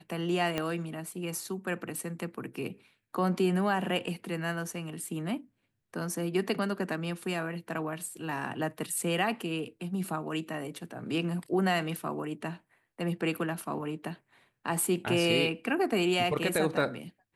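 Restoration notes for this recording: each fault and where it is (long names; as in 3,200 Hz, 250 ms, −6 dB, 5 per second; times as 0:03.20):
0:00.58: click −16 dBFS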